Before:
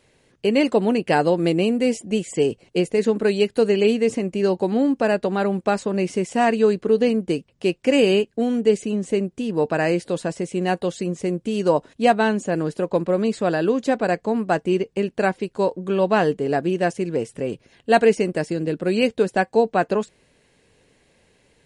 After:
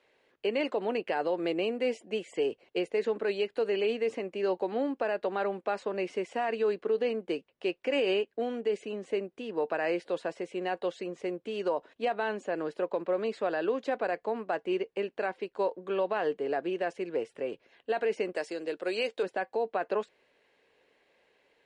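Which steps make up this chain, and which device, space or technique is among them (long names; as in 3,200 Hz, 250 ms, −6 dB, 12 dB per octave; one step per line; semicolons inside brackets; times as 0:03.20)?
0:18.35–0:19.23: bass and treble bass −11 dB, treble +11 dB
DJ mixer with the lows and highs turned down (three-way crossover with the lows and the highs turned down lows −21 dB, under 340 Hz, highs −18 dB, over 4,000 Hz; brickwall limiter −15.5 dBFS, peak gain reduction 11.5 dB)
level −5 dB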